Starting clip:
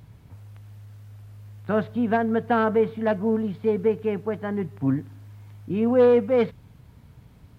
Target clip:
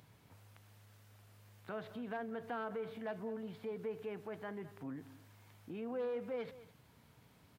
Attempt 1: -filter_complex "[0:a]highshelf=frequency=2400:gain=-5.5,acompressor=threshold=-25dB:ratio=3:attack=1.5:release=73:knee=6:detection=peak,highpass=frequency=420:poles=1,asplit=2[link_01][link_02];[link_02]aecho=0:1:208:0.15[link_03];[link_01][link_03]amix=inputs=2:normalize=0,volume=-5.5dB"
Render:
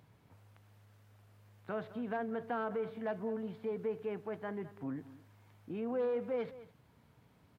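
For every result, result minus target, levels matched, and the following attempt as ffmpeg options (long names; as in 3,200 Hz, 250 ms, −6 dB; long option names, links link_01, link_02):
4,000 Hz band −6.0 dB; downward compressor: peak gain reduction −5.5 dB
-filter_complex "[0:a]highshelf=frequency=2400:gain=2.5,acompressor=threshold=-25dB:ratio=3:attack=1.5:release=73:knee=6:detection=peak,highpass=frequency=420:poles=1,asplit=2[link_01][link_02];[link_02]aecho=0:1:208:0.15[link_03];[link_01][link_03]amix=inputs=2:normalize=0,volume=-5.5dB"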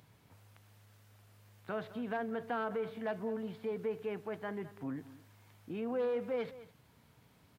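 downward compressor: peak gain reduction −5 dB
-filter_complex "[0:a]highshelf=frequency=2400:gain=2.5,acompressor=threshold=-32.5dB:ratio=3:attack=1.5:release=73:knee=6:detection=peak,highpass=frequency=420:poles=1,asplit=2[link_01][link_02];[link_02]aecho=0:1:208:0.15[link_03];[link_01][link_03]amix=inputs=2:normalize=0,volume=-5.5dB"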